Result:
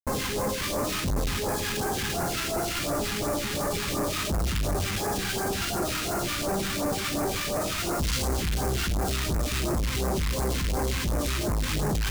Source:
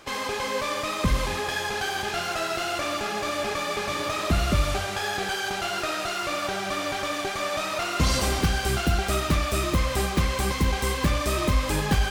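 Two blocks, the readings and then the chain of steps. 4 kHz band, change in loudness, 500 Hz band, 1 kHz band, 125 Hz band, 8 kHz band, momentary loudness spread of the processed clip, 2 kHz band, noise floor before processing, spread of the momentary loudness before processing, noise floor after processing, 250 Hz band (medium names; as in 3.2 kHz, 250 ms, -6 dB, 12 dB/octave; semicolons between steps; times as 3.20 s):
-2.0 dB, -2.0 dB, -1.0 dB, -4.5 dB, -2.0 dB, +1.5 dB, 1 LU, -4.5 dB, -31 dBFS, 4 LU, -31 dBFS, -0.5 dB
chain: feedback echo behind a band-pass 173 ms, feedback 82%, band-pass 1.5 kHz, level -12 dB; Schmitt trigger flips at -30.5 dBFS; phase shifter stages 2, 2.8 Hz, lowest notch 550–3100 Hz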